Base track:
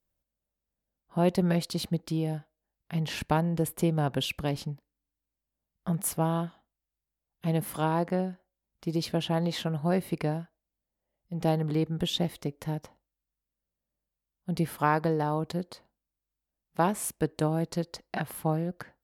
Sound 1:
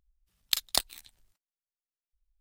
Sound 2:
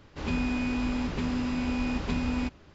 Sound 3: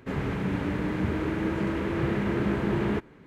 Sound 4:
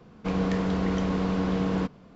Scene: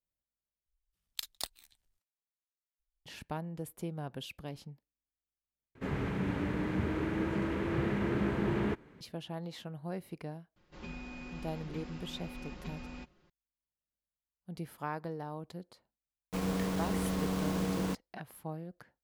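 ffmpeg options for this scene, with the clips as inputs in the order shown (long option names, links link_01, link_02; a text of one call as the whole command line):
ffmpeg -i bed.wav -i cue0.wav -i cue1.wav -i cue2.wav -i cue3.wav -filter_complex "[0:a]volume=-13dB[link_01];[2:a]aecho=1:1:5.6:0.65[link_02];[4:a]acrusher=bits=5:mix=0:aa=0.000001[link_03];[link_01]asplit=3[link_04][link_05][link_06];[link_04]atrim=end=0.664[link_07];[1:a]atrim=end=2.4,asetpts=PTS-STARTPTS,volume=-12dB[link_08];[link_05]atrim=start=3.056:end=5.754[link_09];[3:a]atrim=end=3.26,asetpts=PTS-STARTPTS,volume=-5dB[link_10];[link_06]atrim=start=9.006[link_11];[link_02]atrim=end=2.74,asetpts=PTS-STARTPTS,volume=-15dB,afade=type=in:duration=0.004:curve=hsin,afade=type=out:start_time=2.736:duration=0.004:curve=hsin,adelay=10560[link_12];[link_03]atrim=end=2.15,asetpts=PTS-STARTPTS,volume=-7dB,afade=type=in:duration=0.004:curve=hsin,afade=type=out:start_time=2.146:duration=0.004:curve=hsin,adelay=16080[link_13];[link_07][link_08]acrossfade=duration=0.004:curve1=hsin:curve2=hsin[link_14];[link_14][link_09]acrossfade=duration=0.004:curve1=hsin:curve2=hsin[link_15];[link_15][link_10]acrossfade=duration=0.004:curve1=hsin:curve2=hsin[link_16];[link_16][link_11]acrossfade=duration=0.004:curve1=hsin:curve2=hsin[link_17];[link_17][link_12][link_13]amix=inputs=3:normalize=0" out.wav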